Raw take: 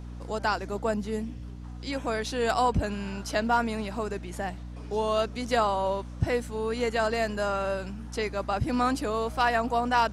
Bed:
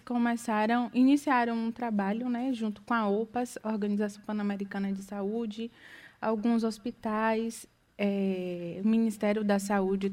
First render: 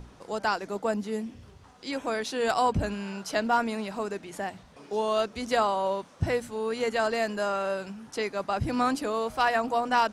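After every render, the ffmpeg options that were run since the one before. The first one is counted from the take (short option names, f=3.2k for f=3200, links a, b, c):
-af "bandreject=f=60:t=h:w=6,bandreject=f=120:t=h:w=6,bandreject=f=180:t=h:w=6,bandreject=f=240:t=h:w=6,bandreject=f=300:t=h:w=6"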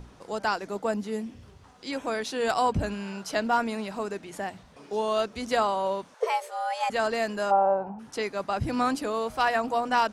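-filter_complex "[0:a]asettb=1/sr,asplit=3[a][b][c];[a]atrim=end=6.144[d];[b]atrim=start=6.14:end=6.9,asetpts=PTS-STARTPTS,afade=t=in:d=0.004:c=qsin,afade=t=out:st=0.756:d=0.004:c=qsin,afreqshift=350[e];[c]atrim=start=6.896[f];[d][e]acrossfade=d=0.004:c1=hsin:c2=qsin[g];[g][f]acrossfade=d=0.004:c1=qsin:c2=hsin,asplit=3[h][i][j];[h]afade=t=out:st=7.5:d=0.02[k];[i]lowpass=f=830:t=q:w=9.5,afade=t=in:st=7.5:d=0.02,afade=t=out:st=7.98:d=0.02[l];[j]afade=t=in:st=7.98:d=0.02[m];[k][l][m]amix=inputs=3:normalize=0"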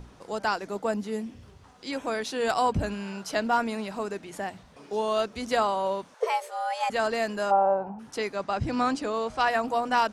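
-filter_complex "[0:a]asettb=1/sr,asplit=3[a][b][c];[a]atrim=end=8.364[d];[b]atrim=start=8.36:end=9.48,asetpts=PTS-STARTPTS,afade=t=in:d=0.004:c=qsin,afade=t=out:st=1.116:d=0.004:c=qsin,lowpass=f=8.1k:w=0.5412,lowpass=f=8.1k:w=1.3066[e];[c]atrim=start=9.476[f];[d][e]acrossfade=d=0.004:c1=hsin:c2=qsin[g];[g][f]acrossfade=d=0.004:c1=qsin:c2=hsin"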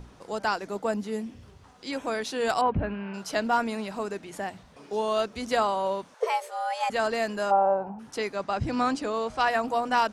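-filter_complex "[0:a]asettb=1/sr,asplit=3[a][b][c];[a]atrim=end=2.614[d];[b]atrim=start=2.61:end=3.14,asetpts=PTS-STARTPTS,afade=t=in:d=0.004:c=qsin,afade=t=out:st=0.526:d=0.004:c=qsin,lowpass=f=2.6k:w=0.5412,lowpass=f=2.6k:w=1.3066[e];[c]atrim=start=3.136[f];[d][e]acrossfade=d=0.004:c1=hsin:c2=qsin[g];[g][f]acrossfade=d=0.004:c1=qsin:c2=hsin"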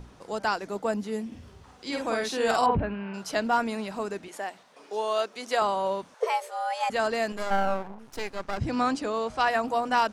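-filter_complex "[0:a]asettb=1/sr,asplit=3[a][b][c];[a]atrim=end=1.274[d];[b]atrim=start=1.27:end=2.81,asetpts=PTS-STARTPTS,afade=t=in:d=0.004:c=qsin,afade=t=out:st=1.536:d=0.004:c=qsin,asplit=2[e][f];[f]adelay=49,volume=-2.5dB[g];[e][g]amix=inputs=2:normalize=0,atrim=end_sample=67914[h];[c]atrim=start=2.806[i];[d][h]acrossfade=d=0.004:c1=hsin:c2=qsin[j];[j][i]acrossfade=d=0.004:c1=qsin:c2=hsin,asettb=1/sr,asplit=3[k][l][m];[k]atrim=end=4.284[n];[l]atrim=start=4.28:end=5.62,asetpts=PTS-STARTPTS,afade=t=in:d=0.004:c=qsin,afade=t=out:st=1.336:d=0.004:c=qsin,highpass=400[o];[m]atrim=start=5.616[p];[n][o]acrossfade=d=0.004:c1=hsin:c2=qsin[q];[q][p]acrossfade=d=0.004:c1=qsin:c2=hsin,asettb=1/sr,asplit=3[r][s][t];[r]atrim=end=7.324[u];[s]atrim=start=7.32:end=8.58,asetpts=PTS-STARTPTS,afade=t=in:d=0.004:c=qsin,afade=t=out:st=1.256:d=0.004:c=qsin,aeval=exprs='max(val(0),0)':c=same[v];[t]atrim=start=8.576[w];[u][v]acrossfade=d=0.004:c1=hsin:c2=qsin[x];[x][w]acrossfade=d=0.004:c1=qsin:c2=hsin"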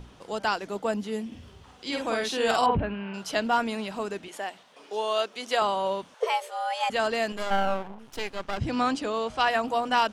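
-af "equalizer=f=3.1k:t=o:w=0.5:g=7"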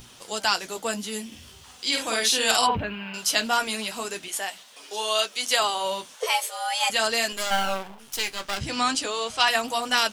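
-af "crystalizer=i=9:c=0,flanger=delay=7.5:depth=7.5:regen=-39:speed=0.41:shape=triangular"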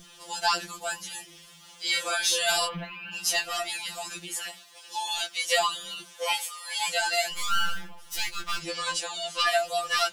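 -af "asoftclip=type=tanh:threshold=-10dB,afftfilt=real='re*2.83*eq(mod(b,8),0)':imag='im*2.83*eq(mod(b,8),0)':win_size=2048:overlap=0.75"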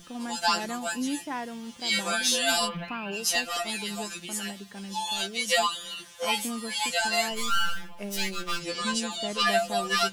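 -filter_complex "[1:a]volume=-8dB[a];[0:a][a]amix=inputs=2:normalize=0"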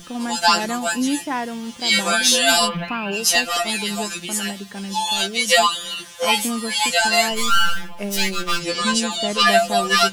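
-af "volume=9dB"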